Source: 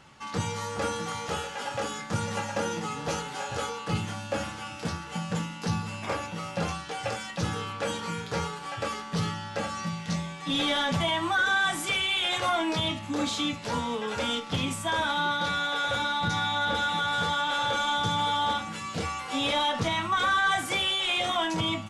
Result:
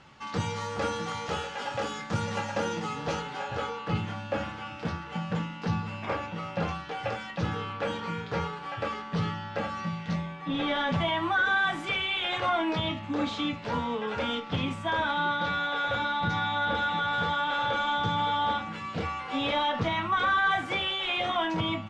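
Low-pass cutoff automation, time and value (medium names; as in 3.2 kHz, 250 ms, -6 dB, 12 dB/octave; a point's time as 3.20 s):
2.90 s 5.3 kHz
3.51 s 3.1 kHz
10.06 s 3.1 kHz
10.51 s 1.9 kHz
10.92 s 3 kHz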